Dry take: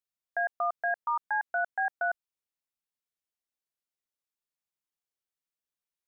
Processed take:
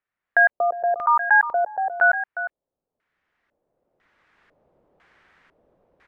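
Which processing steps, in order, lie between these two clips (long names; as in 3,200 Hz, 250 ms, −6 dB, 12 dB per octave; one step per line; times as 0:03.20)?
camcorder AGC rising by 12 dB per second
slap from a distant wall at 61 metres, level −11 dB
auto-filter low-pass square 1 Hz 560–1,800 Hz
level +8.5 dB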